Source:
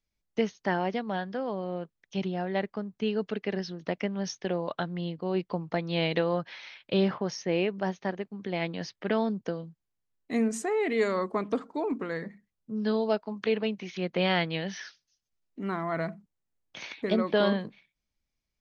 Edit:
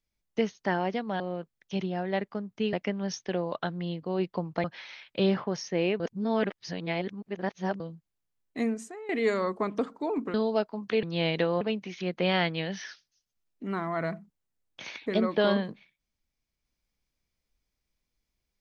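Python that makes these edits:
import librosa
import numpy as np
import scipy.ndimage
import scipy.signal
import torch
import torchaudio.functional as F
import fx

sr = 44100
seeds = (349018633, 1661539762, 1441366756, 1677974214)

y = fx.edit(x, sr, fx.cut(start_s=1.2, length_s=0.42),
    fx.cut(start_s=3.15, length_s=0.74),
    fx.move(start_s=5.8, length_s=0.58, to_s=13.57),
    fx.reverse_span(start_s=7.74, length_s=1.8),
    fx.fade_out_to(start_s=10.33, length_s=0.5, curve='qua', floor_db=-16.0),
    fx.cut(start_s=12.08, length_s=0.8), tone=tone)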